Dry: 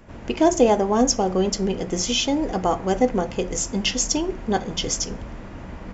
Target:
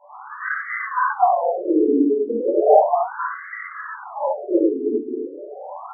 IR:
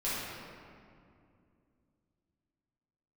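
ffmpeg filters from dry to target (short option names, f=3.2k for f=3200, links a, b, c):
-filter_complex "[0:a]acrossover=split=230|1200[a][b][c];[a]acrusher=samples=22:mix=1:aa=0.000001:lfo=1:lforange=13.2:lforate=0.87[d];[c]aphaser=in_gain=1:out_gain=1:delay=1.3:decay=0.53:speed=0.47:type=sinusoidal[e];[d][b][e]amix=inputs=3:normalize=0,highpass=f=240:t=q:w=0.5412,highpass=f=240:t=q:w=1.307,lowpass=f=2.1k:t=q:w=0.5176,lowpass=f=2.1k:t=q:w=0.7071,lowpass=f=2.1k:t=q:w=1.932,afreqshift=-64[f];[1:a]atrim=start_sample=2205,afade=t=out:st=0.19:d=0.01,atrim=end_sample=8820[g];[f][g]afir=irnorm=-1:irlink=0,afftfilt=real='re*between(b*sr/1024,320*pow(1600/320,0.5+0.5*sin(2*PI*0.35*pts/sr))/1.41,320*pow(1600/320,0.5+0.5*sin(2*PI*0.35*pts/sr))*1.41)':imag='im*between(b*sr/1024,320*pow(1600/320,0.5+0.5*sin(2*PI*0.35*pts/sr))/1.41,320*pow(1600/320,0.5+0.5*sin(2*PI*0.35*pts/sr))*1.41)':win_size=1024:overlap=0.75,volume=7.5dB"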